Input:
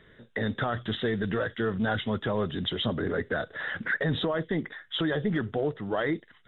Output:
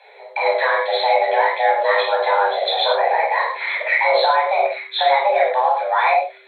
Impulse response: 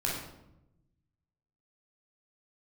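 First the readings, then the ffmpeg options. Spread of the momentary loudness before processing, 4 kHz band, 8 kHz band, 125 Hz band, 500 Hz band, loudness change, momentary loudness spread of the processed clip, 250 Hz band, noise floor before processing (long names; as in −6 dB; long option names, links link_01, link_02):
5 LU, +10.5 dB, can't be measured, below −40 dB, +12.5 dB, +12.0 dB, 5 LU, below −20 dB, −58 dBFS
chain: -filter_complex "[0:a]acontrast=35,afreqshift=390[link_01];[1:a]atrim=start_sample=2205,atrim=end_sample=6174[link_02];[link_01][link_02]afir=irnorm=-1:irlink=0"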